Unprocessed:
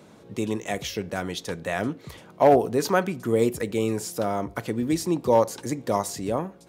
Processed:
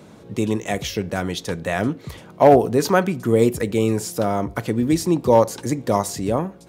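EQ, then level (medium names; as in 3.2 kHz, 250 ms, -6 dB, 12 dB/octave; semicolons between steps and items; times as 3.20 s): bass shelf 190 Hz +5.5 dB; +4.0 dB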